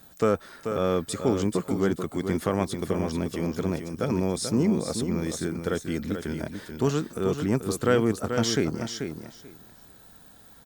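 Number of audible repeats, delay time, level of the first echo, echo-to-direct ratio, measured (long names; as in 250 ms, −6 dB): 2, 436 ms, −7.5 dB, −7.5 dB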